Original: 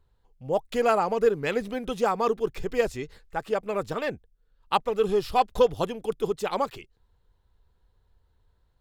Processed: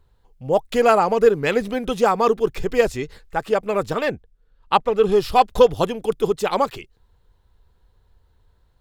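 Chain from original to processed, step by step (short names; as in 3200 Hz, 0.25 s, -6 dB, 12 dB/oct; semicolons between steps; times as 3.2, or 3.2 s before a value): 4.11–5.12 high shelf 6000 Hz -10 dB; gain +7 dB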